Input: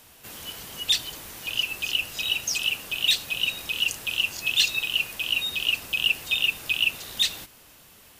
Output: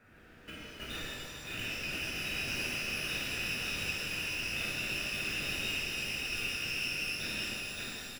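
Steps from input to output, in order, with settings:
running median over 41 samples
flat-topped bell 1,800 Hz +13 dB 1.2 octaves
in parallel at −1.5 dB: downward compressor, threshold −42 dBFS, peak gain reduction 18 dB
on the sum: dynamic equaliser 1,300 Hz, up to −4 dB, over −43 dBFS, Q 0.83
on a send: single-tap delay 565 ms −6 dB
on the sum: output level in coarse steps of 20 dB
reverb with rising layers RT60 3 s, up +12 semitones, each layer −8 dB, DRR −9.5 dB
level −5.5 dB

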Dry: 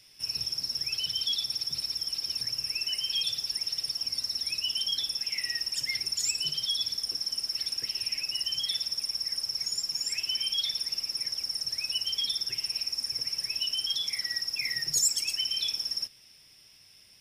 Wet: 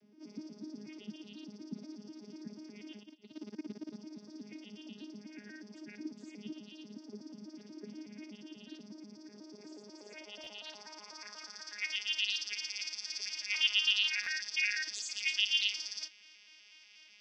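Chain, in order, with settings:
vocoder with an arpeggio as carrier bare fifth, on G#3, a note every 122 ms
0:03.03–0:03.96: compressor whose output falls as the input rises −39 dBFS, ratio −0.5
0:13.50–0:14.28: parametric band 1,200 Hz +14.5 dB → +7 dB 1.3 octaves
brickwall limiter −22 dBFS, peak gain reduction 10 dB
band-pass filter sweep 260 Hz → 2,700 Hz, 0:09.19–0:12.43
buffer that repeats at 0:10.43/0:13.22/0:14.23, samples 512, times 2
level +8 dB

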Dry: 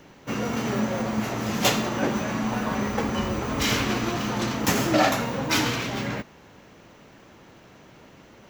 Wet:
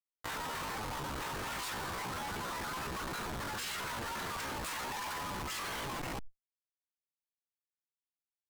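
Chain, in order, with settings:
Butterworth high-pass 620 Hz 96 dB per octave
reverb reduction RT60 1.8 s
low-pass filter 9,300 Hz 12 dB per octave
parametric band 2,600 Hz −3 dB 1.4 octaves
spring reverb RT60 3.3 s, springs 52 ms, chirp 35 ms, DRR 10 dB
comparator with hysteresis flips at −37 dBFS
pitch shifter +5 semitones
envelope flattener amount 100%
level −5 dB

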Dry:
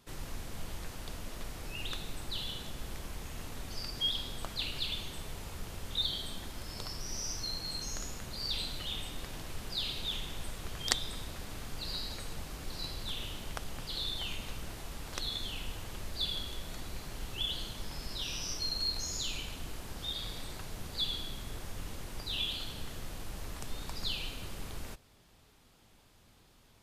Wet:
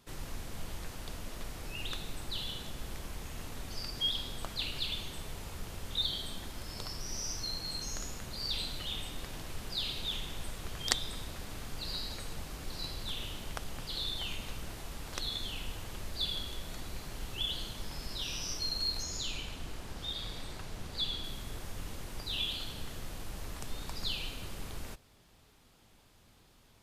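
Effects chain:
0:19.03–0:21.24: high-shelf EQ 10,000 Hz −9 dB

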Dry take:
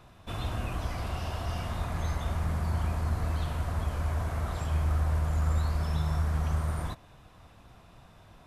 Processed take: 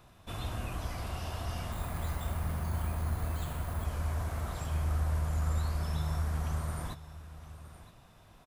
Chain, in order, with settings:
0:01.72–0:03.85: bad sample-rate conversion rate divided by 4×, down filtered, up hold
high-shelf EQ 7,000 Hz +8 dB
single-tap delay 968 ms −15.5 dB
level −4 dB

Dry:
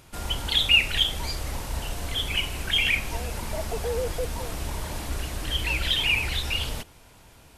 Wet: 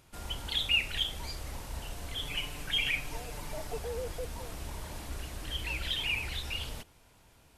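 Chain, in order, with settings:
0:02.21–0:03.79: comb filter 6.8 ms, depth 55%
level −9 dB

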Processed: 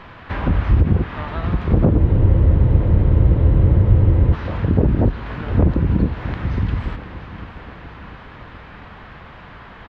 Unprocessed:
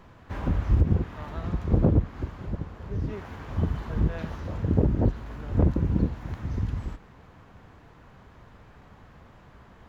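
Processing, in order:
high-shelf EQ 2,100 Hz +9.5 dB
in parallel at −1 dB: brickwall limiter −17.5 dBFS, peak gain reduction 8.5 dB
on the sum: high-frequency loss of the air 390 metres
repeating echo 697 ms, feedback 59%, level −17 dB
frozen spectrum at 0:01.99, 2.35 s
one half of a high-frequency compander encoder only
level +3 dB

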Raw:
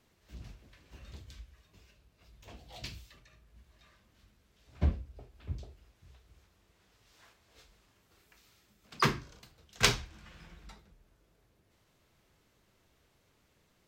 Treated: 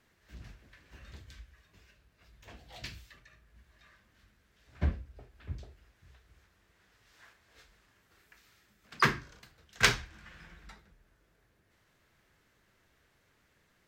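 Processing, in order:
parametric band 1,700 Hz +8.5 dB 0.77 octaves
level −1.5 dB

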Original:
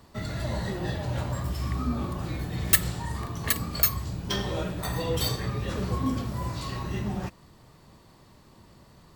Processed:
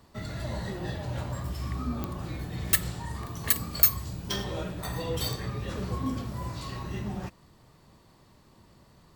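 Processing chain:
0:03.26–0:04.44: high-shelf EQ 6,300 Hz +7 dB
digital clicks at 0:02.04/0:05.33, −14 dBFS
level −3.5 dB

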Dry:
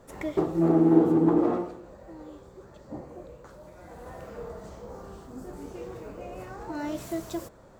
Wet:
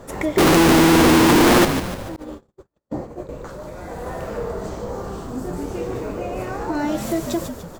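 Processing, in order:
0:00.38–0:01.65: sign of each sample alone
in parallel at +1.5 dB: downward compressor, threshold −37 dBFS, peak gain reduction 13.5 dB
on the sum: echo with shifted repeats 147 ms, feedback 48%, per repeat −83 Hz, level −8.5 dB
0:02.16–0:03.29: noise gate −35 dBFS, range −48 dB
level +6 dB

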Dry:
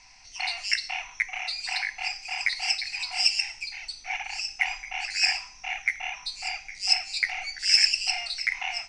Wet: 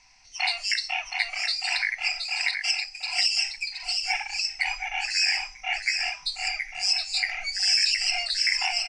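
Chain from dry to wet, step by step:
brickwall limiter −17 dBFS, peak gain reduction 9.5 dB
noise reduction from a noise print of the clip's start 9 dB
0:02.51–0:03.08: noise gate −30 dBFS, range −23 dB
single-tap delay 721 ms −5 dB
level +4.5 dB

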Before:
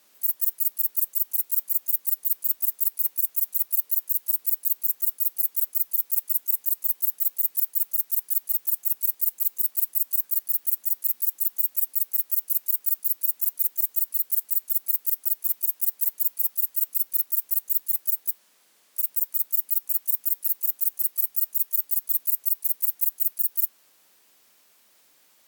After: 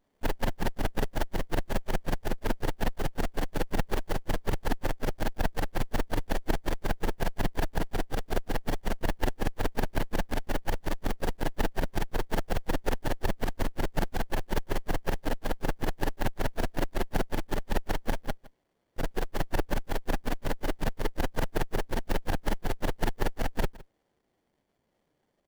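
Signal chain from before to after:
spectral dynamics exaggerated over time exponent 1.5
single-tap delay 162 ms −20.5 dB
windowed peak hold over 33 samples

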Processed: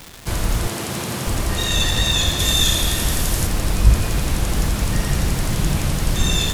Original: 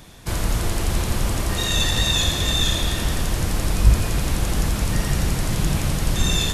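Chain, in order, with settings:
0:00.67–0:01.27: high-pass filter 120 Hz 24 dB per octave
0:02.39–0:03.47: high-shelf EQ 5,900 Hz +9.5 dB
surface crackle 370 per second −26 dBFS
level +1.5 dB

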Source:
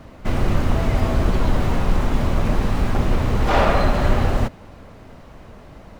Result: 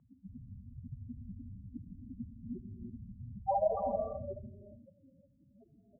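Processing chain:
spectral peaks only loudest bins 4
flat-topped band-pass 630 Hz, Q 0.53
repeating echo 76 ms, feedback 34%, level −19 dB
reverb whose tail is shaped and stops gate 390 ms rising, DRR 4.5 dB
level −1 dB

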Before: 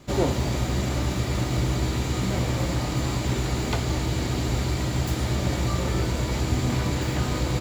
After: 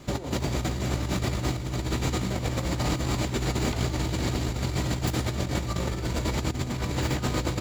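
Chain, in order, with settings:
compressor whose output falls as the input rises −27 dBFS, ratio −0.5

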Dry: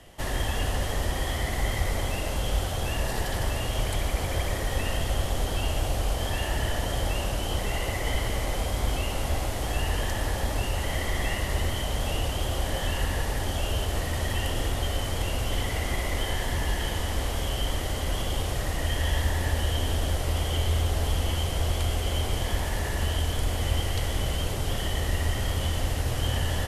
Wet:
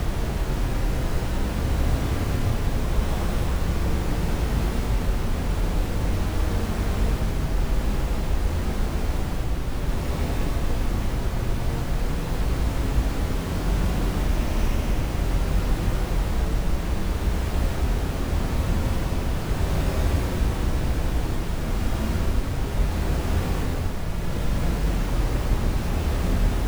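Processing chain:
comparator with hysteresis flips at −23.5 dBFS
extreme stretch with random phases 5.7×, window 0.25 s, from 0:07.52
level +4.5 dB

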